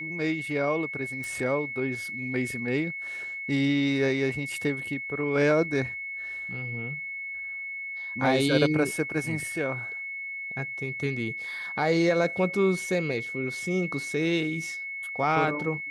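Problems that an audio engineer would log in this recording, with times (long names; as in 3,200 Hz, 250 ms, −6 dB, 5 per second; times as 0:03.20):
whistle 2,200 Hz −33 dBFS
0:01.24: click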